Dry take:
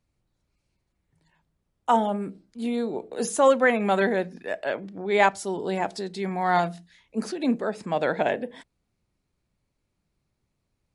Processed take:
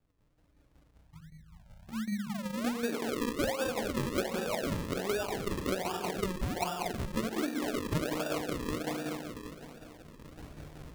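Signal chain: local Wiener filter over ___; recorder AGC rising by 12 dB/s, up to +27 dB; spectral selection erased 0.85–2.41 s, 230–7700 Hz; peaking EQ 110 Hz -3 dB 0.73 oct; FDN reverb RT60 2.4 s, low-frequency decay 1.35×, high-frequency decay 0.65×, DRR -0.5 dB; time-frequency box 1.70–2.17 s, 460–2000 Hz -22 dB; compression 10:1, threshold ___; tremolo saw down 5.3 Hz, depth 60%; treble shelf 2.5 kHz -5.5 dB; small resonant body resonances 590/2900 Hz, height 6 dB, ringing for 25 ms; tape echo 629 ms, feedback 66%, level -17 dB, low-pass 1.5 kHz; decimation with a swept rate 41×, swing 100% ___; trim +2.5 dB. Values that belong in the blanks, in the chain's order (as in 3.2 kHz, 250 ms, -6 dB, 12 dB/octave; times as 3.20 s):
9 samples, -31 dBFS, 1.3 Hz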